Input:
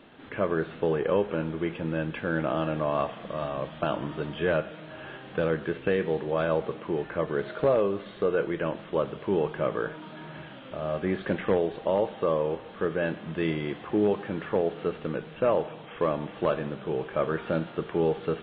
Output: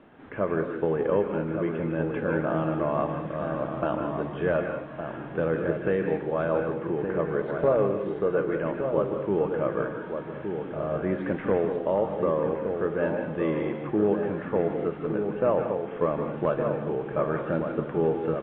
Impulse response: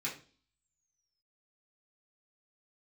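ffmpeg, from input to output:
-filter_complex "[0:a]lowpass=1.8k,asplit=2[a][b];[b]adelay=1166,volume=-6dB,highshelf=f=4k:g=-26.2[c];[a][c]amix=inputs=2:normalize=0,asplit=2[d][e];[1:a]atrim=start_sample=2205,adelay=148[f];[e][f]afir=irnorm=-1:irlink=0,volume=-8dB[g];[d][g]amix=inputs=2:normalize=0"

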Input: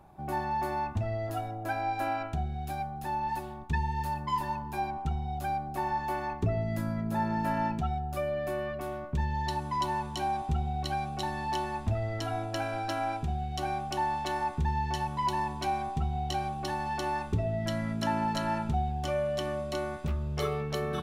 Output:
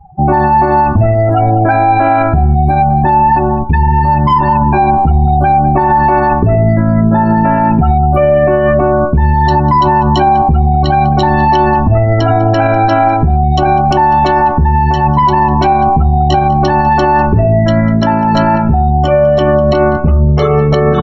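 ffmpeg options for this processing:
-filter_complex "[0:a]afftdn=nr=36:nf=-42,highshelf=f=2.6k:g=-12,acompressor=threshold=-31dB:ratio=6,asplit=2[a][b];[b]adelay=198.3,volume=-21dB,highshelf=f=4k:g=-4.46[c];[a][c]amix=inputs=2:normalize=0,alimiter=level_in=31.5dB:limit=-1dB:release=50:level=0:latency=1,volume=-1dB"

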